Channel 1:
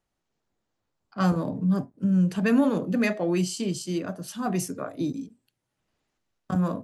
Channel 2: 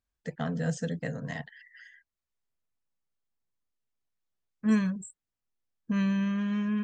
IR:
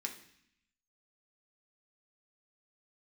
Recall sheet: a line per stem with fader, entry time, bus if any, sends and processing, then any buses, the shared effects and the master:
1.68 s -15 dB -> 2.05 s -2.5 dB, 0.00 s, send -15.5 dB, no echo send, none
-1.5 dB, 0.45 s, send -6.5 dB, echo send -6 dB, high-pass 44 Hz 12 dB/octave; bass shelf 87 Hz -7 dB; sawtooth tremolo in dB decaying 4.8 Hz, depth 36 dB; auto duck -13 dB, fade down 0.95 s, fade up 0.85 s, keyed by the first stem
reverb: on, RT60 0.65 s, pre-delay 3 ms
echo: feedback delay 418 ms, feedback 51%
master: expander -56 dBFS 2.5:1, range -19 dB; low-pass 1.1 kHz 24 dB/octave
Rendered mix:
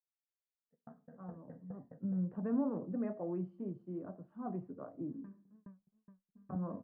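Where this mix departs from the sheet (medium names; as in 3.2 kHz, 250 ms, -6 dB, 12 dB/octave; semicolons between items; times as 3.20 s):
stem 1 -15.0 dB -> -26.0 dB; stem 2 -1.5 dB -> -11.5 dB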